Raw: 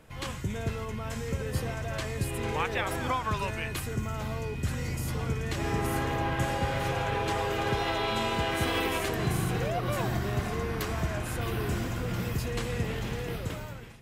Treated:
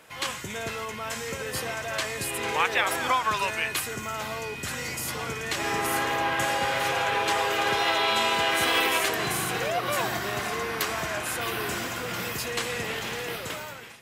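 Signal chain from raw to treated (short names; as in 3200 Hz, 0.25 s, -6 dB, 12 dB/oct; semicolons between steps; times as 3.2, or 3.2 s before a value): HPF 980 Hz 6 dB/oct; gain +9 dB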